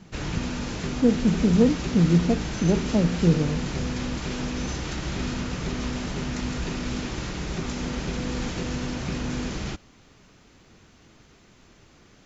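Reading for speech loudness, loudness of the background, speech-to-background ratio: -22.5 LUFS, -30.5 LUFS, 8.0 dB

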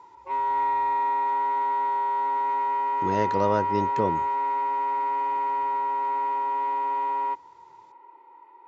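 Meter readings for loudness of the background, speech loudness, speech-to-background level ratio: -25.5 LUFS, -28.5 LUFS, -3.0 dB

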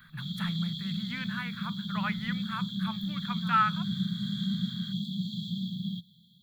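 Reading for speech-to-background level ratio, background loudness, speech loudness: 0.5 dB, -34.0 LUFS, -33.5 LUFS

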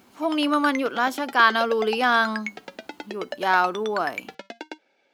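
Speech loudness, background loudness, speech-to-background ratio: -22.0 LUFS, -36.0 LUFS, 14.0 dB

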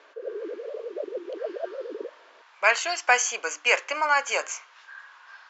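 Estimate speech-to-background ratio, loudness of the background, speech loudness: 12.0 dB, -35.5 LUFS, -23.5 LUFS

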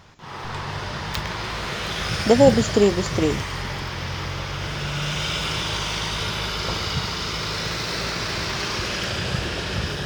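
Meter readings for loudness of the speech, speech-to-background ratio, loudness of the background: -19.5 LUFS, 6.5 dB, -26.0 LUFS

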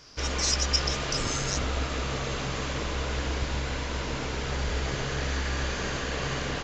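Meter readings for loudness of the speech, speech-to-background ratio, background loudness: -29.5 LUFS, 1.0 dB, -30.5 LUFS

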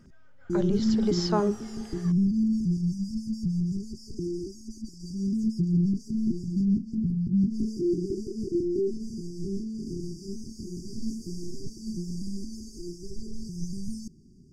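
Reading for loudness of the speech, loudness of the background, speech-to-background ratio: -30.0 LUFS, -29.5 LUFS, -0.5 dB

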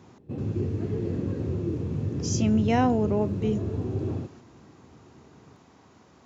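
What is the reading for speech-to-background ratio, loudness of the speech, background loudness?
4.5 dB, -26.0 LUFS, -30.5 LUFS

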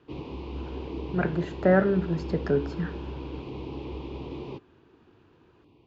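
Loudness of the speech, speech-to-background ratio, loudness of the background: -26.5 LUFS, 11.0 dB, -37.5 LUFS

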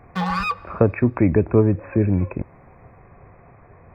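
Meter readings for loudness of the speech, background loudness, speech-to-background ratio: -20.0 LUFS, -25.0 LUFS, 5.0 dB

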